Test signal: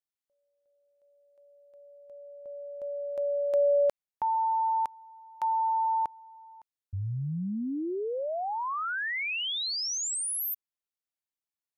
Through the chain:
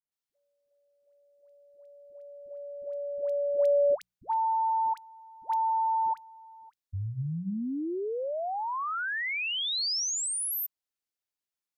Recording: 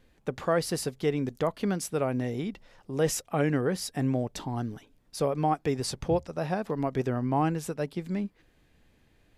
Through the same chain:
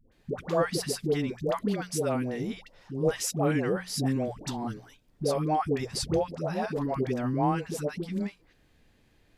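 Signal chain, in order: bell 4800 Hz +2.5 dB; notches 60/120/180 Hz; dispersion highs, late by 0.119 s, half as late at 660 Hz

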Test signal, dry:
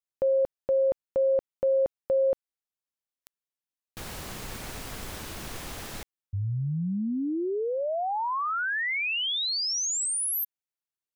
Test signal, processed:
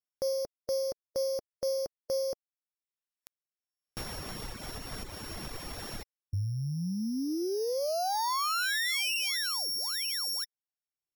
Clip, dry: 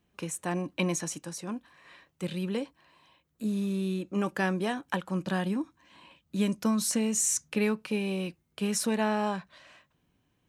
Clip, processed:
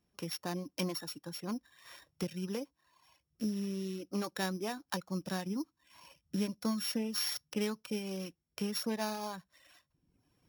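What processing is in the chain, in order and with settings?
sample sorter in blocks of 8 samples; recorder AGC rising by 8.2 dB/s; reverb removal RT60 0.96 s; gain -6 dB

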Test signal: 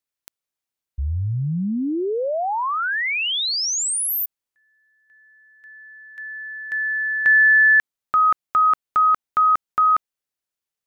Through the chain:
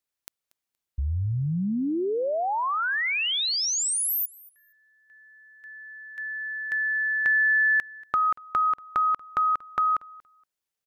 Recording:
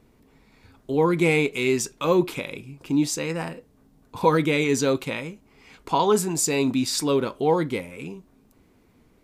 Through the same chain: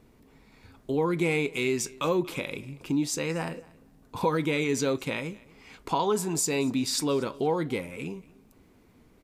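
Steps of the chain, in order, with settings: compressor 2:1, threshold -27 dBFS; on a send: feedback echo 0.235 s, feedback 18%, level -23 dB

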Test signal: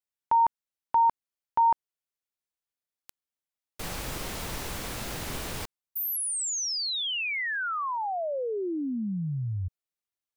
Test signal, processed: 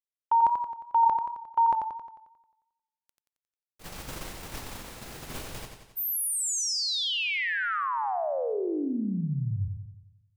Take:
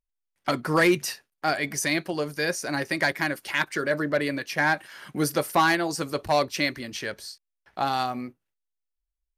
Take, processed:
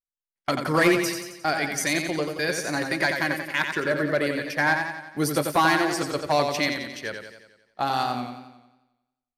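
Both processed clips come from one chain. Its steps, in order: gate -33 dBFS, range -19 dB; warbling echo 89 ms, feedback 55%, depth 58 cents, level -6 dB

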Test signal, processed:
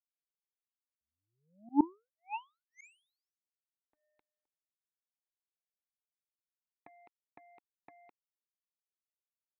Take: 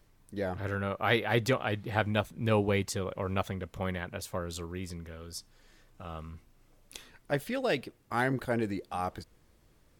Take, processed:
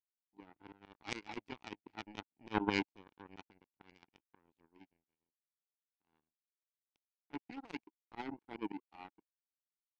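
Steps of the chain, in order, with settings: vowel filter u; power-law curve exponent 3; auto swell 0.118 s; gain +18 dB

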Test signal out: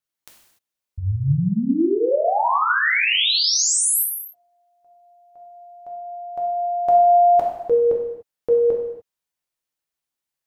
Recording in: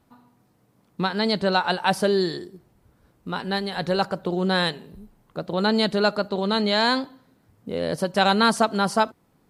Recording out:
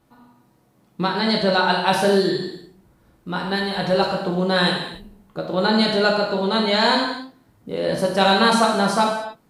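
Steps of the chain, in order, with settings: non-linear reverb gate 0.32 s falling, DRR -1.5 dB

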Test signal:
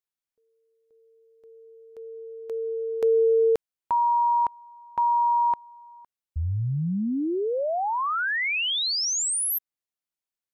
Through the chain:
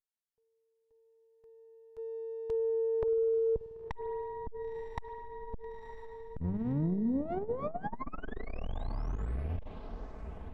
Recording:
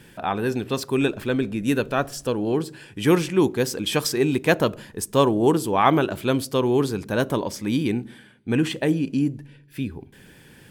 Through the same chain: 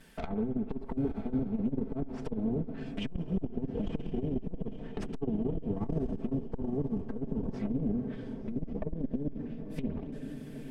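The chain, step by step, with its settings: minimum comb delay 4.5 ms; gate -42 dBFS, range -7 dB; treble ducked by the level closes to 350 Hz, closed at -22.5 dBFS; dynamic EQ 1500 Hz, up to -5 dB, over -48 dBFS, Q 0.84; compressor 12:1, threshold -26 dBFS; low shelf 78 Hz +7 dB; diffused feedback echo 0.997 s, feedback 52%, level -10.5 dB; spring tank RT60 2.3 s, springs 50 ms, chirp 25 ms, DRR 14.5 dB; core saturation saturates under 140 Hz

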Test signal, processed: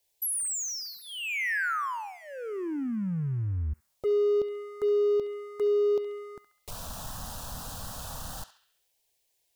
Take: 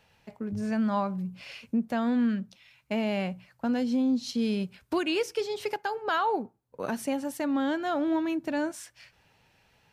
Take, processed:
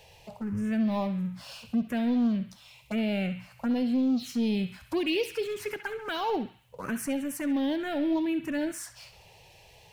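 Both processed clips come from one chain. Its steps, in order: power-law curve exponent 0.7; envelope phaser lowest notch 220 Hz, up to 1900 Hz, full sweep at -20.5 dBFS; narrowing echo 68 ms, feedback 62%, band-pass 2500 Hz, level -9 dB; gain -1 dB

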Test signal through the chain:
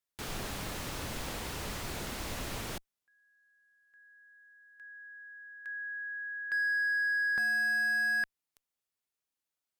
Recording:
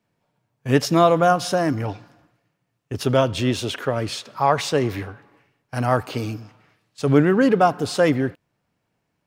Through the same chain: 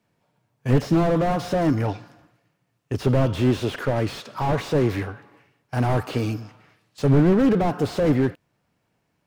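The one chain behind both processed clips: added harmonics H 2 -34 dB, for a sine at -2.5 dBFS; slew limiter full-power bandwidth 46 Hz; gain +2.5 dB

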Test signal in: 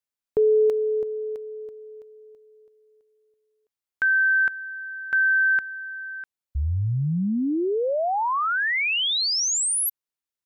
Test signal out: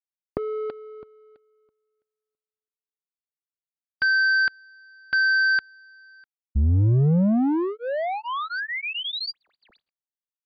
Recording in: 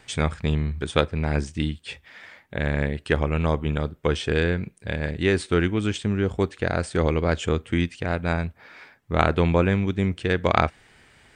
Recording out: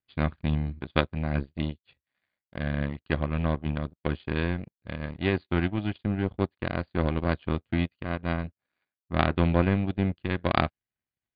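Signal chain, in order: low shelf 340 Hz +6.5 dB; notch comb 450 Hz; in parallel at -5 dB: hard clip -15.5 dBFS; on the sum: power-law curve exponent 2; brick-wall FIR low-pass 4800 Hz; gain -1 dB

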